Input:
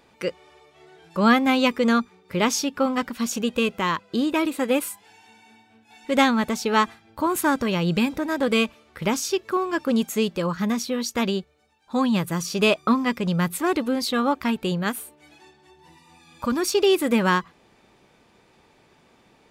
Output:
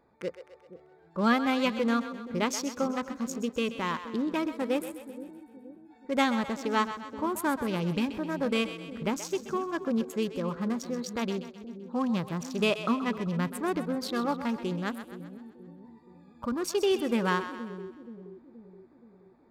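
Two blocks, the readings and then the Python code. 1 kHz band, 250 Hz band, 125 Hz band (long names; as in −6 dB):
−7.0 dB, −6.5 dB, −6.5 dB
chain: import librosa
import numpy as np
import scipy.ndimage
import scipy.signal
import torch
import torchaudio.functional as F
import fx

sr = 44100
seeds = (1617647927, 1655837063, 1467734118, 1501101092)

p1 = fx.wiener(x, sr, points=15)
p2 = p1 + fx.echo_split(p1, sr, split_hz=450.0, low_ms=475, high_ms=129, feedback_pct=52, wet_db=-11, dry=0)
y = p2 * 10.0 ** (-7.0 / 20.0)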